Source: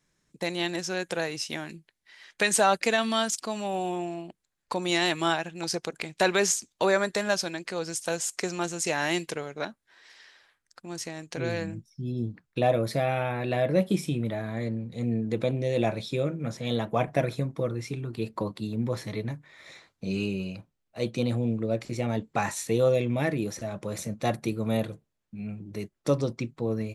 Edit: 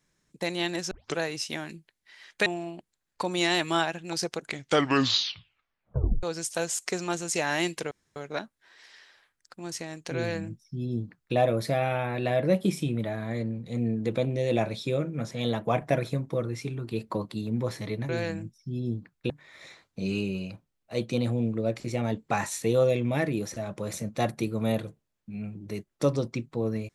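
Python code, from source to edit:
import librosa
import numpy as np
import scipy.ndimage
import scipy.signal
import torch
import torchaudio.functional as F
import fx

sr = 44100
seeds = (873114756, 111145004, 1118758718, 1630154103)

y = fx.edit(x, sr, fx.tape_start(start_s=0.91, length_s=0.26),
    fx.cut(start_s=2.46, length_s=1.51),
    fx.tape_stop(start_s=5.92, length_s=1.82),
    fx.insert_room_tone(at_s=9.42, length_s=0.25),
    fx.duplicate(start_s=11.41, length_s=1.21, to_s=19.35), tone=tone)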